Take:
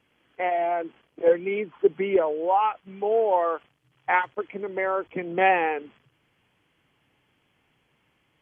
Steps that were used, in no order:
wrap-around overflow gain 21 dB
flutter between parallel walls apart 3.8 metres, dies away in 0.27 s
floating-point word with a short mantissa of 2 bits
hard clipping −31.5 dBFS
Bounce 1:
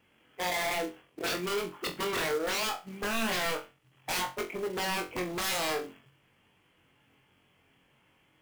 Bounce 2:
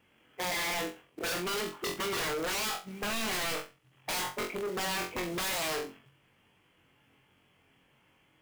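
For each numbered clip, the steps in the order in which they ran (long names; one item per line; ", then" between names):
wrap-around overflow, then hard clipping, then flutter between parallel walls, then floating-point word with a short mantissa
floating-point word with a short mantissa, then wrap-around overflow, then flutter between parallel walls, then hard clipping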